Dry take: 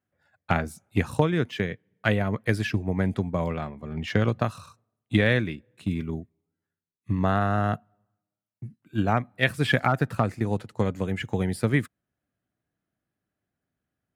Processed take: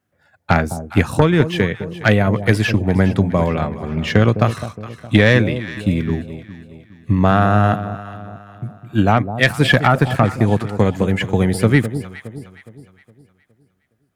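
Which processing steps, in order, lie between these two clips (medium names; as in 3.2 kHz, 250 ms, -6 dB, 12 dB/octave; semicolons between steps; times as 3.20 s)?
sine folder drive 4 dB, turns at -5 dBFS; echo whose repeats swap between lows and highs 207 ms, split 860 Hz, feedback 62%, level -10.5 dB; trim +2.5 dB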